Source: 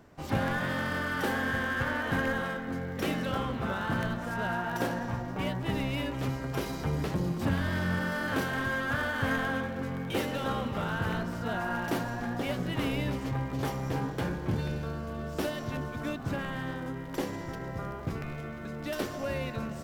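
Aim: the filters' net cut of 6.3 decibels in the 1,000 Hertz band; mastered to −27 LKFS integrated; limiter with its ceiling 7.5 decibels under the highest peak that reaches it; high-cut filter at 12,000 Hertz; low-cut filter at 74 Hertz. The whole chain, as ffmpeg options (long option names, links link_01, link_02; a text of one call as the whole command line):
ffmpeg -i in.wav -af "highpass=74,lowpass=12000,equalizer=frequency=1000:width_type=o:gain=-8.5,volume=8dB,alimiter=limit=-16dB:level=0:latency=1" out.wav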